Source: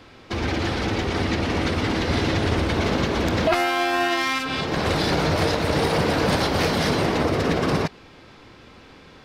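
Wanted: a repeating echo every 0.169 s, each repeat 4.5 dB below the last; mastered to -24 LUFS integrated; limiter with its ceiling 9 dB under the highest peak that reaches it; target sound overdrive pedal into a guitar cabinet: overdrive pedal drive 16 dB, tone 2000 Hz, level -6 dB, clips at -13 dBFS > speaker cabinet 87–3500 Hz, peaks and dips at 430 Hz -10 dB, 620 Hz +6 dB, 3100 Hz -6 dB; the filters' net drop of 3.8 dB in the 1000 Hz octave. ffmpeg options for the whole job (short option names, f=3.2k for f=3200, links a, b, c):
-filter_complex "[0:a]equalizer=f=1k:t=o:g=-7,alimiter=limit=-18.5dB:level=0:latency=1,aecho=1:1:169|338|507|676|845|1014|1183|1352|1521:0.596|0.357|0.214|0.129|0.0772|0.0463|0.0278|0.0167|0.01,asplit=2[a][b];[b]highpass=f=720:p=1,volume=16dB,asoftclip=type=tanh:threshold=-13dB[c];[a][c]amix=inputs=2:normalize=0,lowpass=f=2k:p=1,volume=-6dB,highpass=87,equalizer=f=430:t=q:w=4:g=-10,equalizer=f=620:t=q:w=4:g=6,equalizer=f=3.1k:t=q:w=4:g=-6,lowpass=f=3.5k:w=0.5412,lowpass=f=3.5k:w=1.3066,volume=0.5dB"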